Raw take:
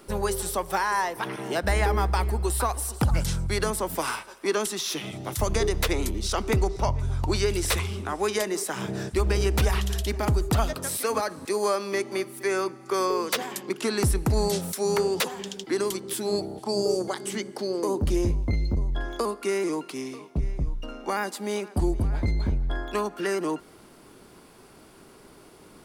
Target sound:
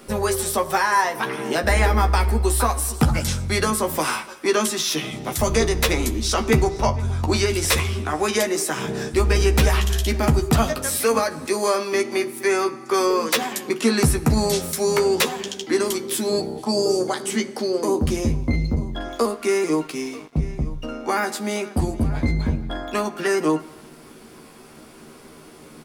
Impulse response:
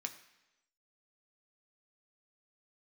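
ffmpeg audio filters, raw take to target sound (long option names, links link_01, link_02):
-filter_complex "[0:a]asplit=2[link_01][link_02];[link_02]adelay=13,volume=-5.5dB[link_03];[link_01][link_03]amix=inputs=2:normalize=0,asplit=2[link_04][link_05];[1:a]atrim=start_sample=2205,lowshelf=frequency=230:gain=9.5[link_06];[link_05][link_06]afir=irnorm=-1:irlink=0,volume=2.5dB[link_07];[link_04][link_07]amix=inputs=2:normalize=0,asettb=1/sr,asplit=3[link_08][link_09][link_10];[link_08]atrim=end=19.154[link_11];[link_09]atrim=start=19.15:end=20.33,asetpts=PTS-STARTPTS,afade=type=in:duration=0.004:curve=qsin,afade=type=out:start_time=1.176:duration=0.004:curve=qsin,aeval=exprs='sgn(val(0))*max(abs(val(0))-0.00596,0)':channel_layout=same[link_12];[link_10]atrim=start=20.326[link_13];[link_11][link_12]acrossfade=duration=0.004:curve1=hsin:curve2=qsin[link_14];[link_14][link_13]acrossfade=duration=0.004:curve1=qsin:curve2=hsin,volume=-1dB"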